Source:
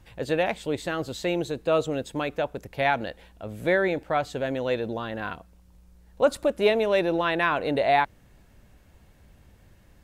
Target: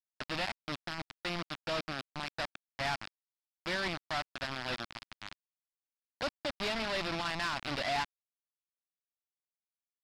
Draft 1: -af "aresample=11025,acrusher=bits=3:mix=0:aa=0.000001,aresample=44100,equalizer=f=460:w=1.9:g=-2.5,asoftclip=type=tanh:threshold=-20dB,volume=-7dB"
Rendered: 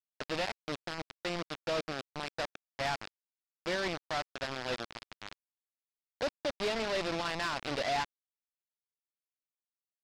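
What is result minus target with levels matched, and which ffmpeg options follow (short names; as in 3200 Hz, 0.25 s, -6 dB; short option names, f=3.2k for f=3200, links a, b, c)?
500 Hz band +3.5 dB
-af "aresample=11025,acrusher=bits=3:mix=0:aa=0.000001,aresample=44100,equalizer=f=460:w=1.9:g=-12.5,asoftclip=type=tanh:threshold=-20dB,volume=-7dB"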